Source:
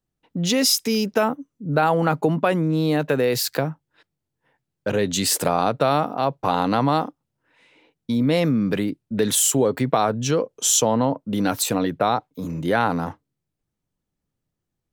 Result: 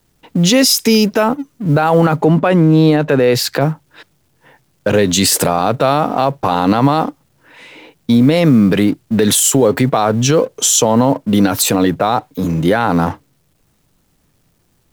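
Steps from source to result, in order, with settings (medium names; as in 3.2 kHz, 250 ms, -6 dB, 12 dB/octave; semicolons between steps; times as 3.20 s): companding laws mixed up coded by mu; 2.22–3.61 s: low-pass 3.6 kHz 6 dB/octave; loudness maximiser +13 dB; trim -2 dB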